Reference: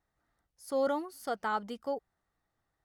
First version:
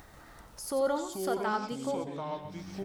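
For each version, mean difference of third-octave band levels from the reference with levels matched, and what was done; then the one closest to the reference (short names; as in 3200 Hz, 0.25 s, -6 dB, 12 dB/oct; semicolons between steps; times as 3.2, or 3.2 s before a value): 8.5 dB: upward compressor, threshold -32 dBFS; on a send: feedback echo 91 ms, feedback 26%, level -9 dB; on the sum: echoes that change speed 0.139 s, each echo -6 st, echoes 3, each echo -6 dB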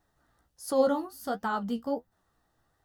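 3.0 dB: spectral gain 0.85–2.12, 280–12000 Hz -7 dB; bell 2200 Hz -11 dB 0.23 oct; in parallel at -2 dB: limiter -32 dBFS, peak gain reduction 10.5 dB; on the sum: flange 1.4 Hz, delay 9.1 ms, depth 8.8 ms, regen +40%; gain +8 dB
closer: second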